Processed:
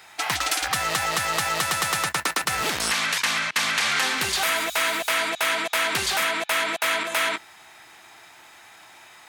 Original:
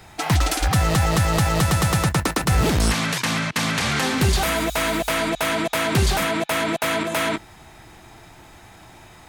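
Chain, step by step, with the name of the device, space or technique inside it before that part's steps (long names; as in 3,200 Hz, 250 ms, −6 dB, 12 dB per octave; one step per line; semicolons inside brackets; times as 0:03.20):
filter by subtraction (in parallel: low-pass filter 1,800 Hz 12 dB per octave + polarity inversion)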